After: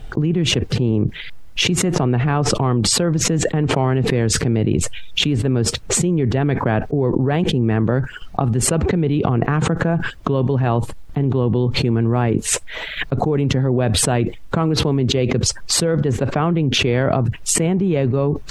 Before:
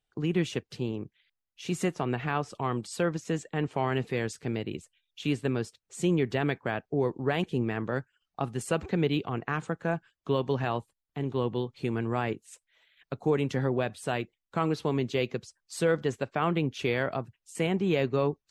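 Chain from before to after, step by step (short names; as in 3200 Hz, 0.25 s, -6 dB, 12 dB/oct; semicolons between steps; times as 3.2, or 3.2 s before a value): tilt -3 dB/oct; fast leveller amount 100%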